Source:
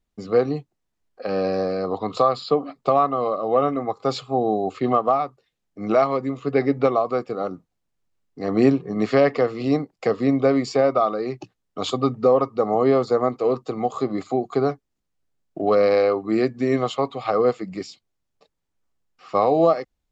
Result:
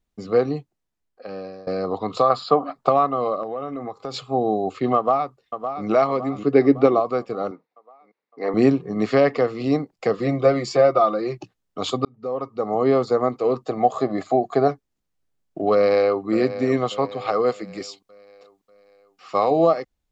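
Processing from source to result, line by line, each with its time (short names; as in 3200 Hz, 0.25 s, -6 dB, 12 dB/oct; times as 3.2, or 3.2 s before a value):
0.48–1.67 fade out, to -21.5 dB
2.3–2.89 band shelf 1000 Hz +8 dB
3.43–4.14 compressor 4:1, threshold -27 dBFS
4.96–5.87 echo throw 0.56 s, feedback 50%, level -8.5 dB
6.38–7 bell 330 Hz +8 dB
7.51–8.54 speaker cabinet 340–4600 Hz, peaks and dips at 460 Hz +6 dB, 920 Hz +6 dB, 2100 Hz +8 dB, 3100 Hz -7 dB
10.13–11.38 comb 5.8 ms
12.05–12.93 fade in
13.66–14.68 small resonant body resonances 660/1700 Hz, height 11 dB, ringing for 20 ms
15.73–16.25 echo throw 0.59 s, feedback 50%, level -12.5 dB
17.27–19.51 tilt +1.5 dB/oct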